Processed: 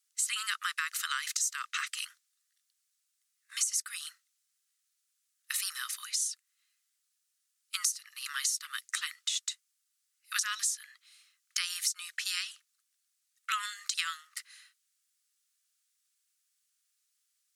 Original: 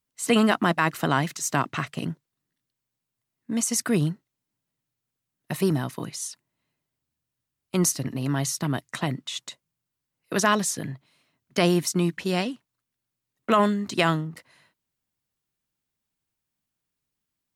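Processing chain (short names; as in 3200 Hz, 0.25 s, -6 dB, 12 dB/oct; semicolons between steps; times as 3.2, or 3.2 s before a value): Chebyshev high-pass 1200 Hz, order 6; bell 8000 Hz +13.5 dB 2.3 oct; compressor 6:1, threshold -28 dBFS, peak gain reduction 19 dB; gain -1.5 dB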